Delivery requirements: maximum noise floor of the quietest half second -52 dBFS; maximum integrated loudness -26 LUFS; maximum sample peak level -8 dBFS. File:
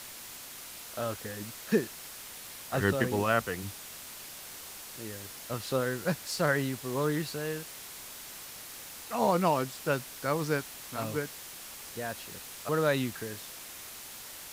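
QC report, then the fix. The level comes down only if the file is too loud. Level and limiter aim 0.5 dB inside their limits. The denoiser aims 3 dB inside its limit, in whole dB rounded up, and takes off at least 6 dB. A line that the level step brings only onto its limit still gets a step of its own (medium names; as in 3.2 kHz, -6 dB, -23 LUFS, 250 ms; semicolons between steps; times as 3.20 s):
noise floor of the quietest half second -45 dBFS: fail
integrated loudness -33.5 LUFS: pass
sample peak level -11.5 dBFS: pass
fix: noise reduction 10 dB, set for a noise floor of -45 dBFS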